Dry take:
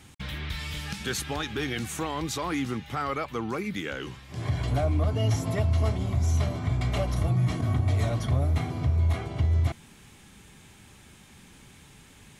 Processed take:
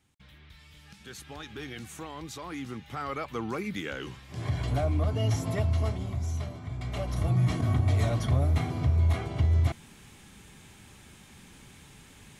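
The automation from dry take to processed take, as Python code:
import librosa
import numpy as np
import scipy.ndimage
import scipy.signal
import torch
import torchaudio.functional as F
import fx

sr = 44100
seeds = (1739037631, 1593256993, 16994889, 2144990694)

y = fx.gain(x, sr, db=fx.line((0.73, -19.0), (1.51, -9.5), (2.45, -9.5), (3.39, -2.0), (5.68, -2.0), (6.67, -10.5), (7.37, 0.0)))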